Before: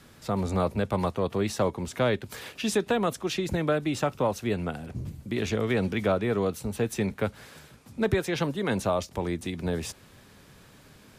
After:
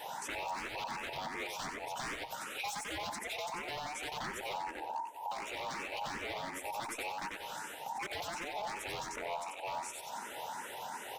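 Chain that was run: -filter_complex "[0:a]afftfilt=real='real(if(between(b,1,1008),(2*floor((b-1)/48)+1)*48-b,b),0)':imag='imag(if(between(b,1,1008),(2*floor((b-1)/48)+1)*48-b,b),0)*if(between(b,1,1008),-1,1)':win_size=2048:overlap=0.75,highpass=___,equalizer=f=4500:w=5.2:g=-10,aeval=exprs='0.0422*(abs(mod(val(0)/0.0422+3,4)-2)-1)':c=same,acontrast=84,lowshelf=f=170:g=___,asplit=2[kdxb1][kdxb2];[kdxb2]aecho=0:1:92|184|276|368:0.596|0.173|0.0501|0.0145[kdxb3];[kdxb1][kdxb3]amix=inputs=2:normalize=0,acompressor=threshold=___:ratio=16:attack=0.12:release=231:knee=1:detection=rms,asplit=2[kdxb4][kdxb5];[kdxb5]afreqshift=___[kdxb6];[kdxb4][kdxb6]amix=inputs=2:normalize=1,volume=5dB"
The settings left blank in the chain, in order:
130, -3.5, -36dB, 2.7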